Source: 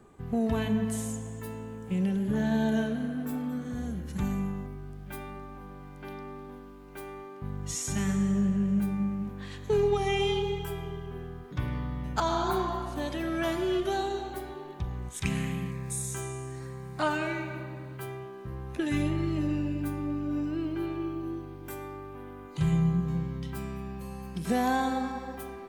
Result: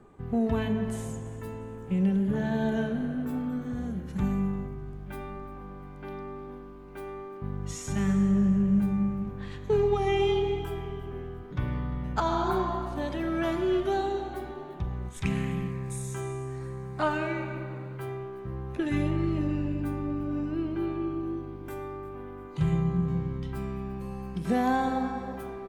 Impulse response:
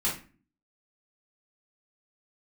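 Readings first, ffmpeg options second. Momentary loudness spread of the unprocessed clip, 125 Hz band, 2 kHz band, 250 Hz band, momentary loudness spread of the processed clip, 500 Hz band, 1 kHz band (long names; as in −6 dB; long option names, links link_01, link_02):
15 LU, +1.5 dB, −0.5 dB, +1.5 dB, 14 LU, +2.0 dB, +1.0 dB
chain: -filter_complex "[0:a]highshelf=frequency=3700:gain=-10.5,asplit=4[link_01][link_02][link_03][link_04];[link_02]adelay=348,afreqshift=-66,volume=-20.5dB[link_05];[link_03]adelay=696,afreqshift=-132,volume=-27.2dB[link_06];[link_04]adelay=1044,afreqshift=-198,volume=-34dB[link_07];[link_01][link_05][link_06][link_07]amix=inputs=4:normalize=0,asplit=2[link_08][link_09];[1:a]atrim=start_sample=2205[link_10];[link_09][link_10]afir=irnorm=-1:irlink=0,volume=-22dB[link_11];[link_08][link_11]amix=inputs=2:normalize=0,volume=1dB"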